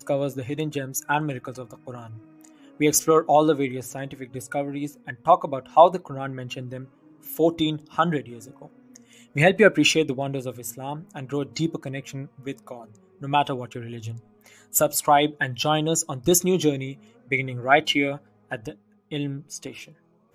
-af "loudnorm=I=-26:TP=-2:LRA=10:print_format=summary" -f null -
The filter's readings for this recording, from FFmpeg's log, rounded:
Input Integrated:    -23.2 LUFS
Input True Peak:      -1.6 dBTP
Input LRA:             6.3 LU
Input Threshold:     -34.9 LUFS